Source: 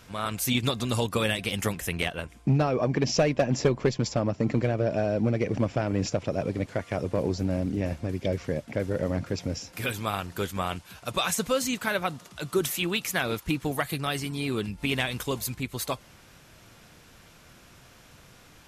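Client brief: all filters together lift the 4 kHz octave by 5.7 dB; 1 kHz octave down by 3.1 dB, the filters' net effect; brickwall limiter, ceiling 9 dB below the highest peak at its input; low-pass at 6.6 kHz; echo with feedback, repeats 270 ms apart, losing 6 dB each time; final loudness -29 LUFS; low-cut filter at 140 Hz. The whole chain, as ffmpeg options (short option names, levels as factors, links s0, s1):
-af "highpass=140,lowpass=6600,equalizer=f=1000:t=o:g=-5,equalizer=f=4000:t=o:g=8,alimiter=limit=0.133:level=0:latency=1,aecho=1:1:270|540|810|1080|1350|1620:0.501|0.251|0.125|0.0626|0.0313|0.0157"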